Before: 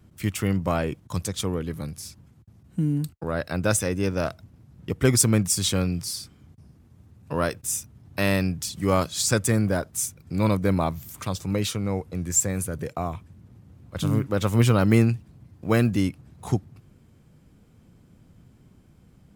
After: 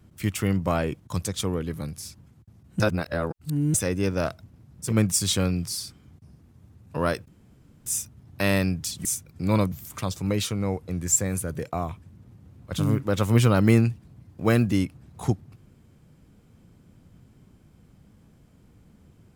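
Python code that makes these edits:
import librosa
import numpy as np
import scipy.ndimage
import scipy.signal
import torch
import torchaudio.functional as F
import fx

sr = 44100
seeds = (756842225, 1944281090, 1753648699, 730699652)

y = fx.edit(x, sr, fx.reverse_span(start_s=2.8, length_s=0.94),
    fx.cut(start_s=4.9, length_s=0.36, crossfade_s=0.16),
    fx.insert_room_tone(at_s=7.64, length_s=0.58),
    fx.cut(start_s=8.83, length_s=1.13),
    fx.cut(start_s=10.63, length_s=0.33), tone=tone)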